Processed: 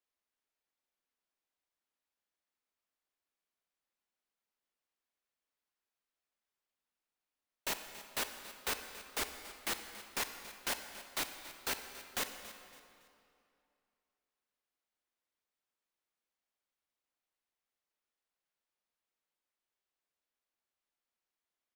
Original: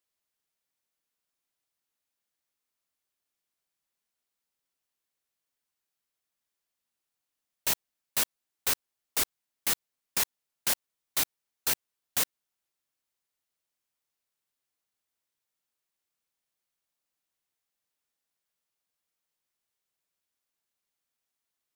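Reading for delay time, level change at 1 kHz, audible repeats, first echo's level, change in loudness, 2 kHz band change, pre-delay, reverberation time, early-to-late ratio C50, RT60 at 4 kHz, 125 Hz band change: 280 ms, −2.0 dB, 2, −16.0 dB, −9.0 dB, −3.0 dB, 28 ms, 2.6 s, 7.5 dB, 2.0 s, −7.5 dB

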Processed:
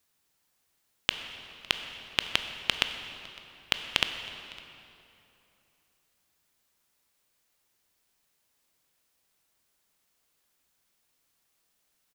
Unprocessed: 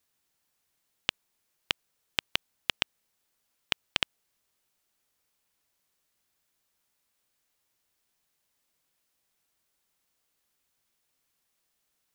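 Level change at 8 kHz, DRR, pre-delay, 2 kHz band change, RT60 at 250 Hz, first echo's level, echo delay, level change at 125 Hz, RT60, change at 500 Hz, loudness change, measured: +3.0 dB, 7.0 dB, 16 ms, +3.5 dB, 3.1 s, −24.0 dB, 557 ms, +3.5 dB, 2.9 s, +3.5 dB, +2.5 dB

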